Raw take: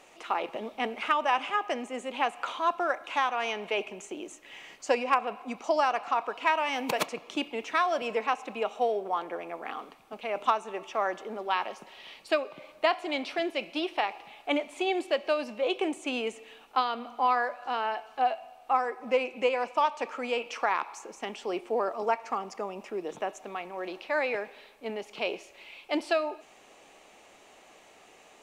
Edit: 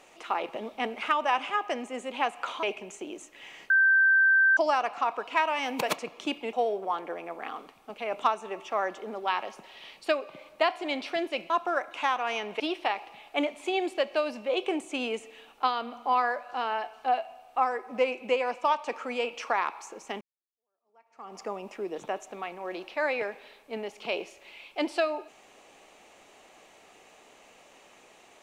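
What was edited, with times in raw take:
0:02.63–0:03.73: move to 0:13.73
0:04.80–0:05.67: beep over 1,560 Hz −17.5 dBFS
0:07.63–0:08.76: remove
0:21.34–0:22.51: fade in exponential

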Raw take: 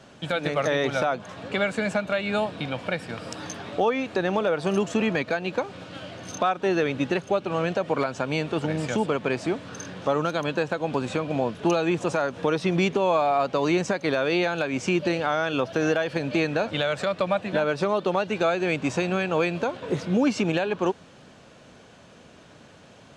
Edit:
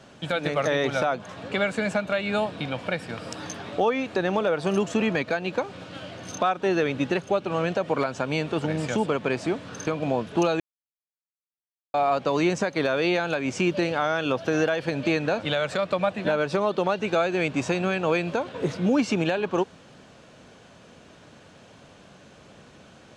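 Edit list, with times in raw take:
0:09.87–0:11.15: remove
0:11.88–0:13.22: silence

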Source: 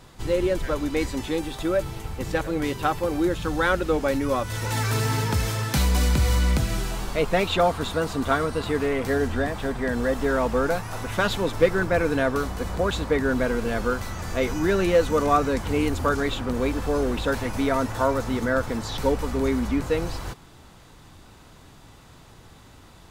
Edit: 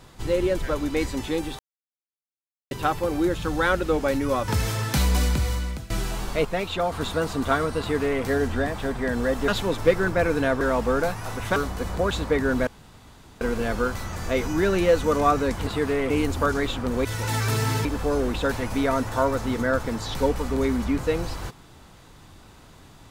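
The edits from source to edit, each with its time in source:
0:01.59–0:02.71: silence
0:04.48–0:05.28: move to 0:16.68
0:05.95–0:06.70: fade out, to −18.5 dB
0:07.25–0:07.72: clip gain −5 dB
0:08.60–0:09.03: duplicate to 0:15.73
0:10.28–0:11.23: move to 0:12.36
0:13.47: splice in room tone 0.74 s

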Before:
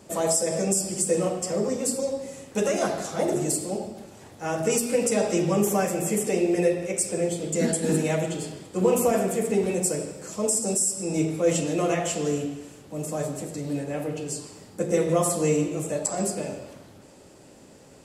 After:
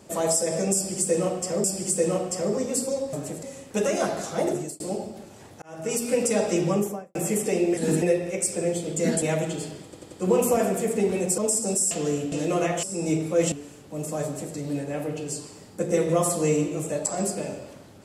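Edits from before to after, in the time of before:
0:00.75–0:01.64: repeat, 2 plays
0:03.29–0:03.61: fade out
0:04.43–0:04.91: fade in
0:05.47–0:05.96: fade out and dull
0:07.78–0:08.03: move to 0:06.58
0:08.66: stutter 0.09 s, 4 plays
0:09.92–0:10.38: remove
0:10.91–0:11.60: swap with 0:12.11–0:12.52
0:13.25–0:13.55: duplicate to 0:02.24

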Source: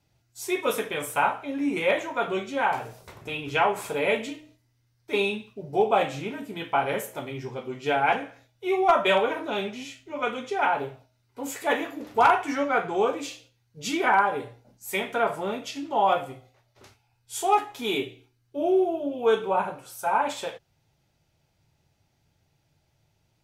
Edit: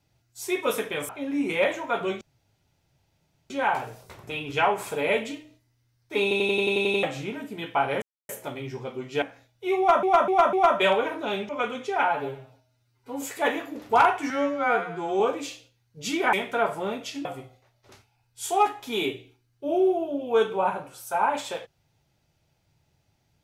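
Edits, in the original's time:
0:01.09–0:01.36: remove
0:02.48: splice in room tone 1.29 s
0:05.20: stutter in place 0.09 s, 9 plays
0:07.00: splice in silence 0.27 s
0:07.93–0:08.22: remove
0:08.78–0:09.03: repeat, 4 plays
0:09.74–0:10.12: remove
0:10.71–0:11.47: time-stretch 1.5×
0:12.55–0:13.00: time-stretch 2×
0:14.13–0:14.94: remove
0:15.86–0:16.17: remove

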